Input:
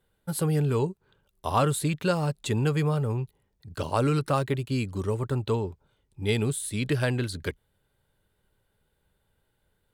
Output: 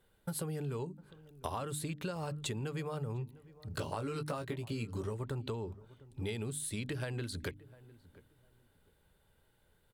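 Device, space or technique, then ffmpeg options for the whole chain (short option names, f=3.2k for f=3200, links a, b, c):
serial compression, leveller first: -filter_complex "[0:a]bandreject=f=50:t=h:w=6,bandreject=f=100:t=h:w=6,bandreject=f=150:t=h:w=6,bandreject=f=200:t=h:w=6,bandreject=f=250:t=h:w=6,bandreject=f=300:t=h:w=6,acompressor=threshold=-27dB:ratio=2.5,acompressor=threshold=-38dB:ratio=6,asettb=1/sr,asplit=3[a][b][c];[a]atrim=end=3.704[d];[b]atrim=start=3.7:end=5.13,asetpts=PTS-STARTPTS,afade=t=in:d=0.004:c=qsin,afade=t=out:st=1.426:d=0.004:c=qsin,asplit=2[e][f];[f]adelay=18,volume=-6.5dB[g];[e][g]amix=inputs=2:normalize=0,atrim=end_sample=63063[h];[c]atrim=start=5.126[i];[d][h]acrossfade=d=0.004:c1=hsin:c2=qsin[j];[j][i]acrossfade=d=0.004:c1=qsin:c2=hsin,asplit=2[k][l];[l]adelay=703,lowpass=f=1.1k:p=1,volume=-19dB,asplit=2[m][n];[n]adelay=703,lowpass=f=1.1k:p=1,volume=0.25[o];[k][m][o]amix=inputs=3:normalize=0,volume=2dB"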